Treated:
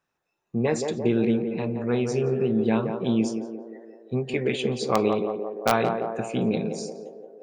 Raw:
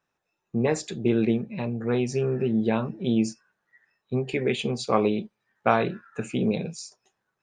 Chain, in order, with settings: in parallel at -3 dB: wrapped overs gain 6 dB; on the sum: narrowing echo 0.173 s, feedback 69%, band-pass 540 Hz, level -4 dB; gain -5 dB

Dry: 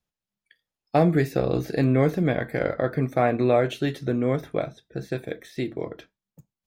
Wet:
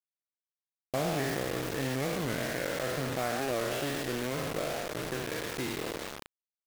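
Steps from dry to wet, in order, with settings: spectral trails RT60 1.96 s; compressor 2:1, threshold -31 dBFS, peak gain reduction 10.5 dB; dynamic EQ 1700 Hz, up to +4 dB, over -44 dBFS, Q 0.95; bit-crush 5-bit; record warp 45 rpm, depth 160 cents; gain -6 dB

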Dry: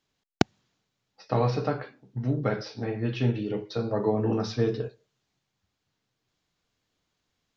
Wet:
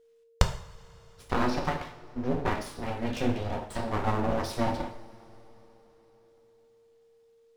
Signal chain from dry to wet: full-wave rectifier; two-slope reverb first 0.51 s, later 4.3 s, from -22 dB, DRR 3.5 dB; whine 460 Hz -59 dBFS

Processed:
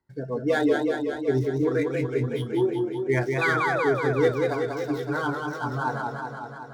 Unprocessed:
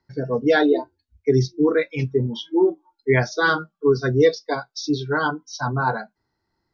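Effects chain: median filter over 9 samples; painted sound fall, 3.41–3.85, 430–2600 Hz -21 dBFS; warbling echo 0.187 s, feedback 70%, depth 95 cents, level -4 dB; gain -6.5 dB

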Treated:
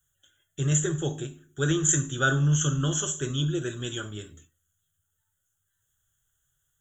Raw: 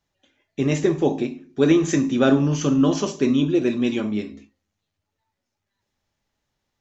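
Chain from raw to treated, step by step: EQ curve 150 Hz 0 dB, 220 Hz -25 dB, 340 Hz -12 dB, 980 Hz -16 dB, 1500 Hz +5 dB, 2300 Hz -20 dB, 3300 Hz +4 dB, 4700 Hz -29 dB, 6900 Hz +13 dB; gain +1.5 dB

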